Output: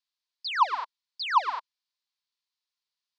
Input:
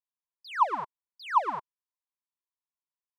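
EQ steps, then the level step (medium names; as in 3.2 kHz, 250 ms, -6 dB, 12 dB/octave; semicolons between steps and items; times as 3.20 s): high-pass 830 Hz 12 dB/octave; resonant low-pass 4.4 kHz, resonance Q 3; tilt EQ +2 dB/octave; +2.5 dB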